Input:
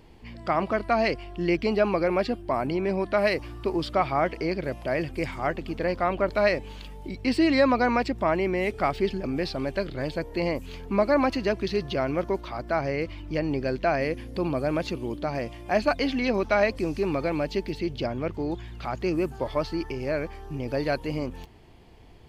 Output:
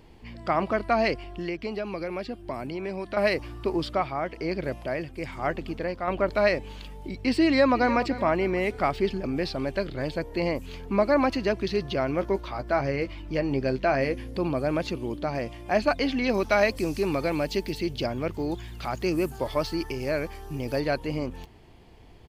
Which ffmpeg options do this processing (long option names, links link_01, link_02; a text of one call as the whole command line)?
ffmpeg -i in.wav -filter_complex "[0:a]asettb=1/sr,asplit=3[link_01][link_02][link_03];[link_01]atrim=end=1.244[link_04];[link_02]atrim=start=1.24:end=3.17,asetpts=PTS-STARTPTS,afade=type=in:duration=0.004:curve=qsin,afade=type=out:start_time=1.926:duration=0.004:curve=qsin,acrossover=split=480|2200[link_05][link_06][link_07];[link_05]acompressor=threshold=-34dB:ratio=4[link_08];[link_06]acompressor=threshold=-37dB:ratio=4[link_09];[link_07]acompressor=threshold=-44dB:ratio=4[link_10];[link_08][link_09][link_10]amix=inputs=3:normalize=0[link_11];[link_03]atrim=start=3.166[link_12];[link_04][link_11]acrossfade=duration=0.004:curve1=hsin:curve2=qsin[link_13];[link_13][link_12]acrossfade=duration=0.004:curve1=qsin:curve2=hsin,asettb=1/sr,asplit=3[link_14][link_15][link_16];[link_14]atrim=end=3.764[link_17];[link_15]atrim=start=3.76:end=6.08,asetpts=PTS-STARTPTS,afade=type=in:duration=0.004:curve=qsin,afade=type=out:start_time=2.316:duration=0.004:curve=qsin,tremolo=f=1.1:d=0.49[link_18];[link_16]atrim=start=6.076[link_19];[link_17][link_18]acrossfade=duration=0.004:curve1=hsin:curve2=qsin[link_20];[link_20][link_19]acrossfade=duration=0.004:curve1=qsin:curve2=hsin,asplit=2[link_21][link_22];[link_22]afade=type=in:start_time=7.45:duration=0.01,afade=type=out:start_time=7.99:duration=0.01,aecho=0:1:300|600|900|1200:0.177828|0.0800226|0.0360102|0.0162046[link_23];[link_21][link_23]amix=inputs=2:normalize=0,asettb=1/sr,asplit=3[link_24][link_25][link_26];[link_24]atrim=end=12.204[link_27];[link_25]atrim=start=12.2:end=14.33,asetpts=PTS-STARTPTS,afade=type=in:duration=0.004:curve=qsin,afade=type=out:start_time=2.126:duration=0.004:curve=qsin,asplit=2[link_28][link_29];[link_29]adelay=15,volume=-9dB[link_30];[link_28][link_30]amix=inputs=2:normalize=0,atrim=end_sample=93933[link_31];[link_26]atrim=start=14.326[link_32];[link_27][link_31]acrossfade=duration=0.004:curve1=hsin:curve2=qsin[link_33];[link_33][link_32]acrossfade=duration=0.004:curve1=qsin:curve2=hsin,asettb=1/sr,asplit=3[link_34][link_35][link_36];[link_34]atrim=end=16.294[link_37];[link_35]atrim=start=16.29:end=20.8,asetpts=PTS-STARTPTS,afade=type=in:duration=0.004:curve=qsin,afade=type=out:start_time=4.506:duration=0.004:curve=qsin,aemphasis=mode=production:type=50kf[link_38];[link_36]atrim=start=20.796[link_39];[link_37][link_38]acrossfade=duration=0.004:curve1=hsin:curve2=qsin[link_40];[link_40][link_39]acrossfade=duration=0.004:curve1=qsin:curve2=hsin" out.wav